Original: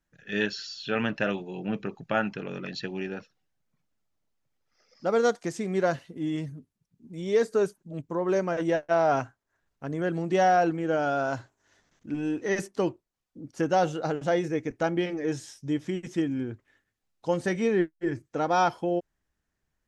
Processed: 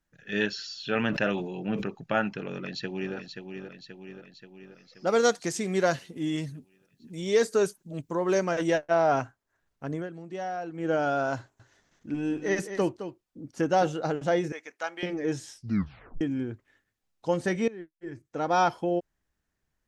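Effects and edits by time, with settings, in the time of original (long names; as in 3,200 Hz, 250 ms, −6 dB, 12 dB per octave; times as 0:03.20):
0:00.90–0:01.88: level that may fall only so fast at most 50 dB per second
0:02.49–0:03.15: delay throw 530 ms, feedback 60%, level −7 dB
0:05.07–0:08.78: high-shelf EQ 2,500 Hz +9.5 dB
0:09.94–0:10.86: duck −12.5 dB, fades 0.14 s
0:11.38–0:13.87: single-tap delay 215 ms −10.5 dB
0:14.52–0:15.03: high-pass filter 980 Hz
0:15.56: tape stop 0.65 s
0:17.68–0:18.54: fade in quadratic, from −18.5 dB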